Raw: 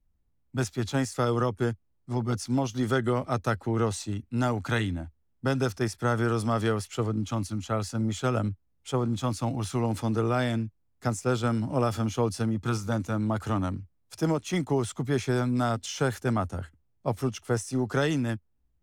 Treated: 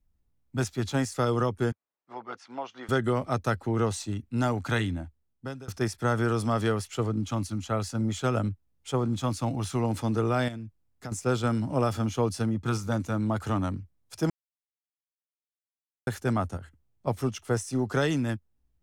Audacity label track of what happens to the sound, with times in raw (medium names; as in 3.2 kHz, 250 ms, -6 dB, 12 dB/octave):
1.720000	2.890000	band-pass 700–2300 Hz
4.970000	5.680000	fade out, to -24 dB
10.480000	11.120000	compression 5:1, threshold -35 dBFS
11.930000	12.920000	tape noise reduction on one side only decoder only
14.300000	16.070000	mute
16.570000	17.070000	compression, threshold -39 dBFS